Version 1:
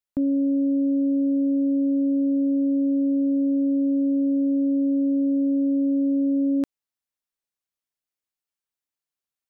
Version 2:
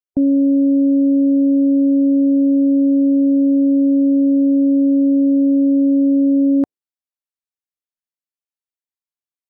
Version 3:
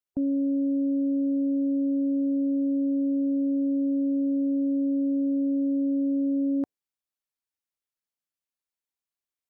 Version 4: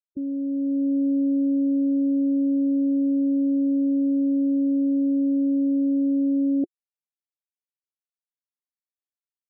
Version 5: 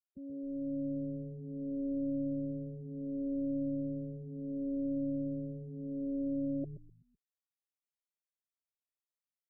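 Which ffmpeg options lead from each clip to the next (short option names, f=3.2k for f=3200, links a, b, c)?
-af "afftdn=nr=17:nf=-40,volume=8dB"
-af "alimiter=limit=-21.5dB:level=0:latency=1:release=29"
-af "dynaudnorm=f=120:g=11:m=6.5dB,afftfilt=real='re*gte(hypot(re,im),0.0631)':imag='im*gte(hypot(re,im),0.0631)':win_size=1024:overlap=0.75,equalizer=f=350:w=2.6:g=10,volume=-7dB"
-filter_complex "[0:a]aecho=1:1:1.6:0.55,asplit=2[a][b];[b]asplit=4[c][d][e][f];[c]adelay=126,afreqshift=-130,volume=-10dB[g];[d]adelay=252,afreqshift=-260,volume=-18dB[h];[e]adelay=378,afreqshift=-390,volume=-25.9dB[i];[f]adelay=504,afreqshift=-520,volume=-33.9dB[j];[g][h][i][j]amix=inputs=4:normalize=0[k];[a][k]amix=inputs=2:normalize=0,asplit=2[l][m];[m]adelay=2.4,afreqshift=0.7[n];[l][n]amix=inputs=2:normalize=1,volume=-7.5dB"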